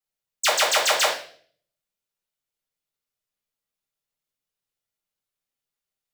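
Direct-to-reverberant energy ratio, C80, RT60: -5.0 dB, 11.0 dB, 0.50 s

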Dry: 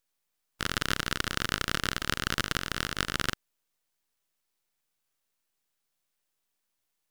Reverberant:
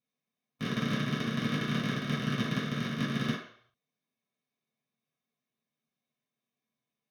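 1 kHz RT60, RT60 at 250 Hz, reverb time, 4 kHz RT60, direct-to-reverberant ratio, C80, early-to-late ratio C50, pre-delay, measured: 0.65 s, 0.40 s, 0.60 s, 0.55 s, -8.0 dB, 8.5 dB, 4.0 dB, 3 ms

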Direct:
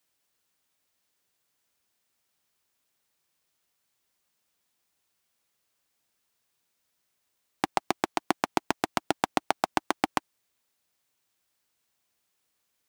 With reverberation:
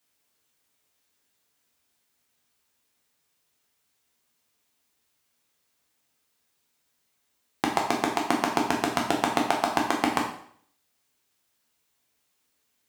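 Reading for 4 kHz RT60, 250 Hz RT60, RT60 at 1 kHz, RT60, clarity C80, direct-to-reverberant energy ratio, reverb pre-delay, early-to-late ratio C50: 0.55 s, 0.60 s, 0.60 s, 0.60 s, 9.0 dB, -1.0 dB, 7 ms, 5.5 dB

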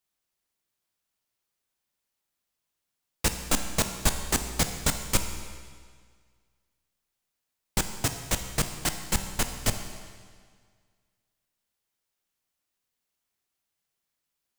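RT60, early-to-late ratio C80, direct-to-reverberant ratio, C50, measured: 1.8 s, 9.0 dB, 6.5 dB, 8.0 dB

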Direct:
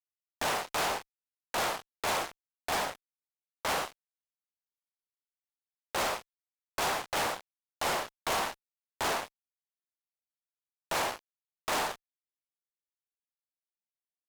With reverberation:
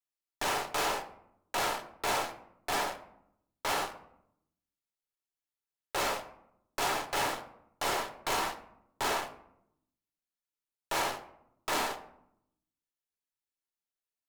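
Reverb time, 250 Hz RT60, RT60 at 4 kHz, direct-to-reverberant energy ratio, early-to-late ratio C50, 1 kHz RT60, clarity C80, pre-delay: 0.75 s, 1.1 s, 0.40 s, 5.5 dB, 12.5 dB, 0.70 s, 15.5 dB, 3 ms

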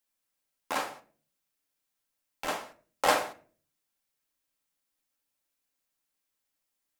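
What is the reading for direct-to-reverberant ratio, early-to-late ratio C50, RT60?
4.0 dB, 16.5 dB, 0.45 s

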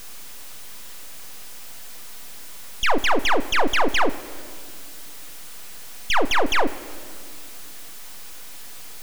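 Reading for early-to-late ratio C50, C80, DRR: 16.0 dB, 17.0 dB, 11.0 dB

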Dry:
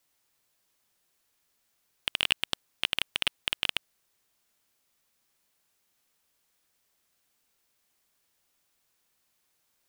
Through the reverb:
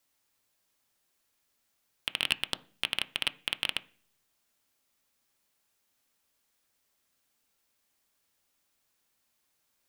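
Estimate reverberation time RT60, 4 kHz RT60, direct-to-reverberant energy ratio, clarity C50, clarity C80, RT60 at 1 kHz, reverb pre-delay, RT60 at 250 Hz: 0.45 s, 0.50 s, 11.5 dB, 21.0 dB, 25.5 dB, 0.40 s, 3 ms, 0.70 s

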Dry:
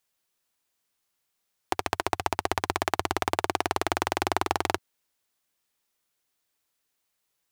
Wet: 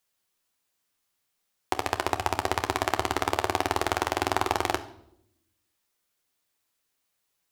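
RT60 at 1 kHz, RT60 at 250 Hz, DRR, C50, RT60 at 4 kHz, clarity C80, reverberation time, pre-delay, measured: 0.65 s, 1.1 s, 7.5 dB, 15.0 dB, 0.60 s, 18.0 dB, 0.75 s, 11 ms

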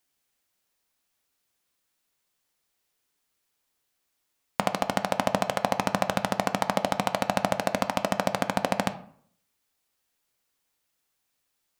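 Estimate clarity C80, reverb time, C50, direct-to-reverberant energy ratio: 18.0 dB, 0.60 s, 14.5 dB, 9.0 dB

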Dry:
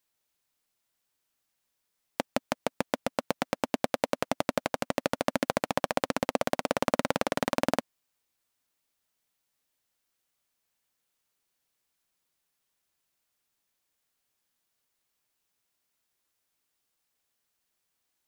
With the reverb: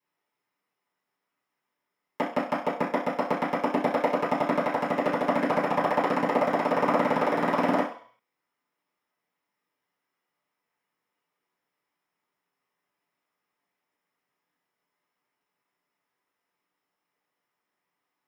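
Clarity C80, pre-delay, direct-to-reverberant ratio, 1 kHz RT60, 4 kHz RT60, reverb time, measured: 11.5 dB, 3 ms, -12.0 dB, 0.55 s, 0.60 s, 0.50 s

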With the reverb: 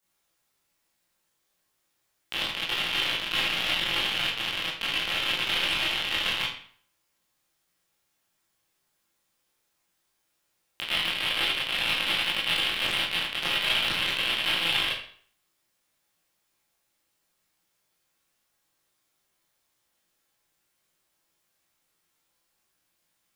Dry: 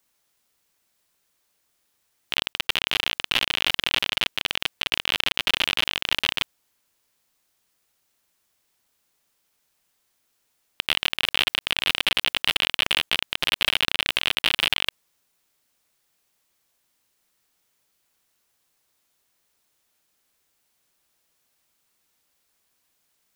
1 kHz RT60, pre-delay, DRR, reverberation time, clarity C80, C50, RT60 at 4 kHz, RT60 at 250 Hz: 0.55 s, 18 ms, -8.5 dB, 0.55 s, 8.0 dB, 3.5 dB, 0.45 s, 0.55 s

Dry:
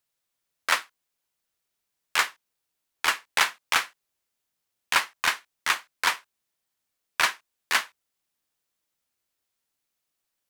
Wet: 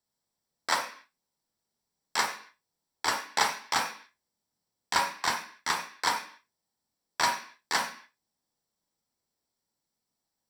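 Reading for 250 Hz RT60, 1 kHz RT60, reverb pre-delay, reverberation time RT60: 0.55 s, 0.45 s, 26 ms, 0.45 s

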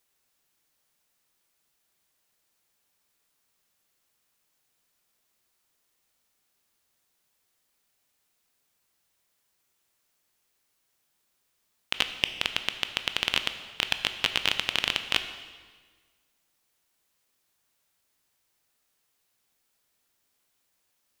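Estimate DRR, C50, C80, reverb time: 8.5 dB, 10.0 dB, 11.5 dB, 1.5 s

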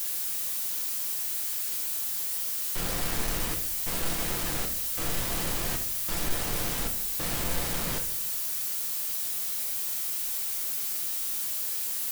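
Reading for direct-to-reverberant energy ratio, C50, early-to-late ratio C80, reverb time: 2.5 dB, 10.0 dB, 13.5 dB, 0.70 s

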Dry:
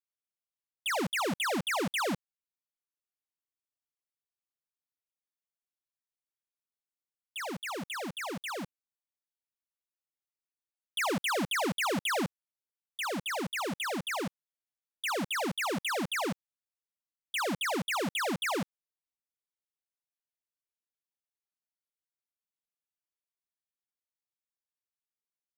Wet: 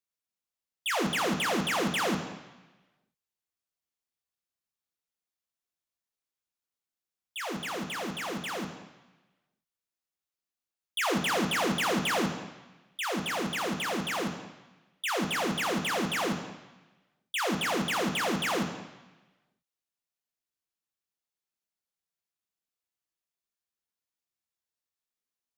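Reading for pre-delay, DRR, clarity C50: 3 ms, 4.5 dB, 7.5 dB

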